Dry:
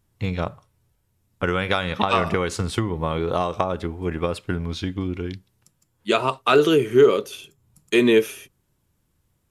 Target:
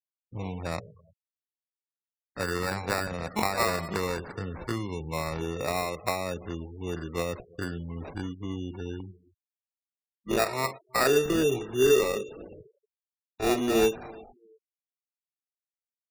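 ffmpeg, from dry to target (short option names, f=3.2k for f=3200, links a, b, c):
-filter_complex "[0:a]acrossover=split=210|3600[a][b][c];[a]alimiter=level_in=1.5dB:limit=-24dB:level=0:latency=1:release=20,volume=-1.5dB[d];[b]bandreject=f=60:t=h:w=6,bandreject=f=120:t=h:w=6,bandreject=f=180:t=h:w=6,bandreject=f=240:t=h:w=6,bandreject=f=300:t=h:w=6,bandreject=f=360:t=h:w=6,bandreject=f=420:t=h:w=6,bandreject=f=480:t=h:w=6[e];[c]equalizer=f=5.9k:t=o:w=0.66:g=-7.5[f];[d][e][f]amix=inputs=3:normalize=0,agate=range=-46dB:threshold=-47dB:ratio=16:detection=peak,adynamicequalizer=threshold=0.0112:dfrequency=2600:dqfactor=1.5:tfrequency=2600:tqfactor=1.5:attack=5:release=100:ratio=0.375:range=1.5:mode=boostabove:tftype=bell,atempo=0.59,acrusher=samples=14:mix=1:aa=0.000001,aecho=1:1:338|676:0.0631|0.0189,afftfilt=real='re*gte(hypot(re,im),0.0178)':imag='im*gte(hypot(re,im),0.0178)':win_size=1024:overlap=0.75,volume=-7dB"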